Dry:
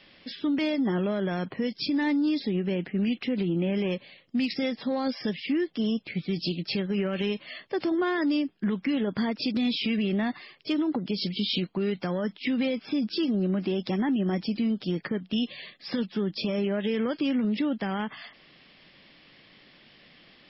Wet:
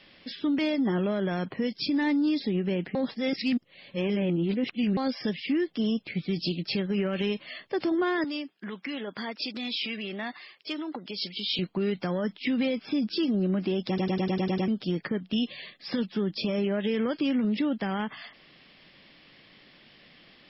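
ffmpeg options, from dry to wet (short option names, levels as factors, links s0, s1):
-filter_complex "[0:a]asettb=1/sr,asplit=3[s0][s1][s2];[s0]atrim=end=8.244[s3];[s1]atrim=start=8.24:end=11.59,asetpts=PTS-STARTPTS,afade=t=in:d=0.004:c=qsin,afade=t=out:st=3.346:d=0.004:c=qsin,highpass=f=800:p=1[s4];[s2]atrim=start=11.586[s5];[s3][s4]acrossfade=d=0.004:c1=hsin:c2=qsin[s6];[s6][s5]acrossfade=d=0.004:c1=qsin:c2=hsin,asplit=11[s7][s8][s9][s10][s11][s12][s13][s14][s15][s16][s17];[s7]atrim=end=2.952[s18];[s8]atrim=start=2.948:end=4.972,asetpts=PTS-STARTPTS,areverse[s19];[s9]atrim=start=4.968:end=13.982[s20];[s10]atrim=start=13.878:end=13.982[s21];[s11]atrim=start=13.878:end=13.982[s22];[s12]atrim=start=13.878:end=13.982[s23];[s13]atrim=start=13.878:end=13.982[s24];[s14]atrim=start=13.878:end=13.982[s25];[s15]atrim=start=13.878:end=13.982[s26];[s16]atrim=start=13.878:end=13.982[s27];[s17]atrim=start=14.678[s28];[s18][s19]acrossfade=d=0.004:c1=hsin:c2=hsin[s29];[s29][s20]acrossfade=d=0.004:c1=hsin:c2=hsin[s30];[s30][s21]acrossfade=d=0.004:c1=hsin:c2=hsin[s31];[s31][s22]acrossfade=d=0.004:c1=hsin:c2=hsin[s32];[s32][s23]acrossfade=d=0.004:c1=hsin:c2=hsin[s33];[s33][s24]acrossfade=d=0.004:c1=hsin:c2=hsin[s34];[s34][s25]acrossfade=d=0.004:c1=hsin:c2=hsin[s35];[s35][s26]acrossfade=d=0.004:c1=hsin:c2=hsin[s36];[s36][s27]acrossfade=d=0.004:c1=hsin:c2=hsin[s37];[s37][s28]acrossfade=d=0.004:c1=hsin:c2=hsin"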